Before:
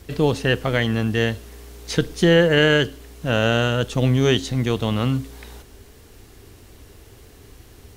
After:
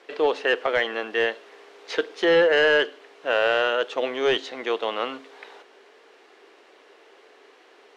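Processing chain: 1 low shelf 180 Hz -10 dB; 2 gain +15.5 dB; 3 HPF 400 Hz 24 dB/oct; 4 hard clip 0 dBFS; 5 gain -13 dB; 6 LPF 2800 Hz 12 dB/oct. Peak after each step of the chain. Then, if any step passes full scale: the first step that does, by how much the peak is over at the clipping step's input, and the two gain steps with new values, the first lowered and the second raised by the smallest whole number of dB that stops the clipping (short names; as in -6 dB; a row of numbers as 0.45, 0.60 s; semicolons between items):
-3.0, +12.5, +10.0, 0.0, -13.0, -12.5 dBFS; step 2, 10.0 dB; step 2 +5.5 dB, step 5 -3 dB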